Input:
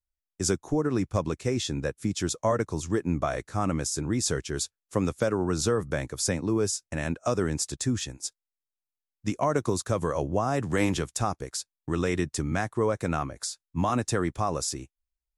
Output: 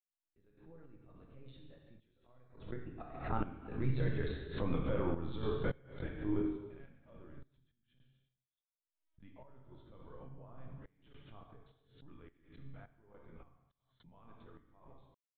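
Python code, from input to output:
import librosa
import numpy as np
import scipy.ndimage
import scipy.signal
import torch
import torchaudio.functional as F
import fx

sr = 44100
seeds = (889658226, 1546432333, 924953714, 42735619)

y = fx.doppler_pass(x, sr, speed_mps=25, closest_m=5.8, pass_at_s=4.57)
y = fx.level_steps(y, sr, step_db=21)
y = fx.peak_eq(y, sr, hz=130.0, db=14.5, octaves=0.22)
y = y + 10.0 ** (-20.0 / 20.0) * np.pad(y, (int(97 * sr / 1000.0), 0))[:len(y)]
y = fx.lpc_vocoder(y, sr, seeds[0], excitation='pitch_kept', order=16)
y = fx.rev_gated(y, sr, seeds[1], gate_ms=460, shape='falling', drr_db=-0.5)
y = fx.tremolo_random(y, sr, seeds[2], hz=3.5, depth_pct=100)
y = fx.pre_swell(y, sr, db_per_s=110.0)
y = y * librosa.db_to_amplitude(7.0)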